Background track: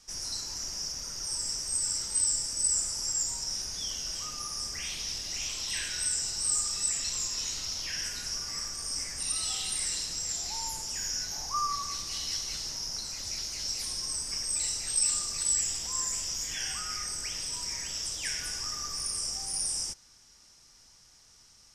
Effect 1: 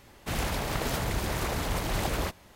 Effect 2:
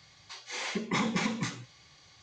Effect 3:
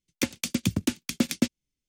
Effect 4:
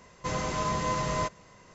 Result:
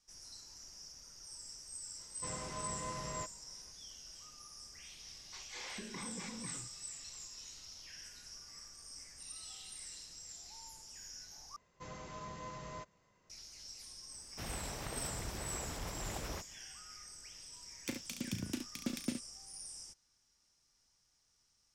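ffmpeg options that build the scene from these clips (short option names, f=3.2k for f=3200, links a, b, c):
-filter_complex "[4:a]asplit=2[a][b];[0:a]volume=-17dB[c];[2:a]acompressor=threshold=-35dB:ratio=6:attack=3.2:release=140:knee=1:detection=peak[d];[3:a]aecho=1:1:36|69:0.355|0.422[e];[c]asplit=2[f][g];[f]atrim=end=11.564[h];[b]atrim=end=1.74,asetpts=PTS-STARTPTS,volume=-17.5dB[i];[g]atrim=start=13.296[j];[a]atrim=end=1.74,asetpts=PTS-STARTPTS,volume=-13.5dB,afade=t=in:d=0.004:c=hsin,afade=t=out:st=1.736:d=0.004:c=hsin,adelay=1980[k];[d]atrim=end=2.22,asetpts=PTS-STARTPTS,volume=-7.5dB,afade=t=in:d=0.004:c=hsin,afade=t=out:st=2.216:d=0.004:c=hsin,adelay=5030[l];[1:a]atrim=end=2.55,asetpts=PTS-STARTPTS,volume=-13dB,afade=t=in:d=0.004:c=hsin,afade=t=out:st=2.546:d=0.004:c=hsin,adelay=14110[m];[e]atrim=end=1.88,asetpts=PTS-STARTPTS,volume=-14.5dB,afade=t=in:d=0.004:c=hsin,afade=t=out:st=1.876:d=0.004:c=hsin,adelay=17660[n];[h][i]acrossfade=d=0.004:c1=hsin:c2=hsin[o];[o][j]acrossfade=d=0.004:c1=hsin:c2=hsin[p];[p][k][l][m][n]amix=inputs=5:normalize=0"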